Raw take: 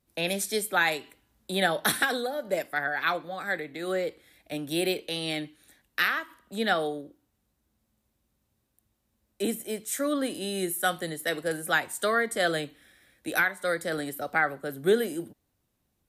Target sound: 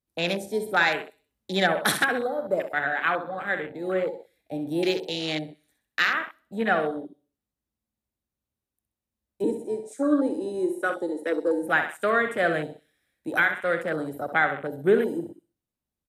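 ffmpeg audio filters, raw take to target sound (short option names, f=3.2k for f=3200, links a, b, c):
-filter_complex "[0:a]asettb=1/sr,asplit=3[a][b][c];[a]atrim=end=9.444[d];[b]atrim=start=9.44:end=11.63,asetpts=PTS-STARTPTS,afade=t=in:d=0.004:c=qsin,afade=t=out:st=2.186:d=0.004:c=qsin,highpass=f=250:w=0.5412,highpass=f=250:w=1.3066,equalizer=f=310:t=q:w=4:g=7,equalizer=f=480:t=q:w=4:g=4,equalizer=f=740:t=q:w=4:g=-9,equalizer=f=1.9k:t=q:w=4:g=-7,equalizer=f=3.1k:t=q:w=4:g=-8,lowpass=f=10k:w=0.5412,lowpass=f=10k:w=1.3066[e];[c]atrim=start=11.626[f];[d][e]acrossfade=d=0.004:c1=hsin:c2=qsin[g];[g][f]acrossfade=d=0.004:c1=qsin:c2=hsin,aecho=1:1:64|128|192|256|320:0.376|0.169|0.0761|0.0342|0.0154,afwtdn=0.02,volume=2.5dB"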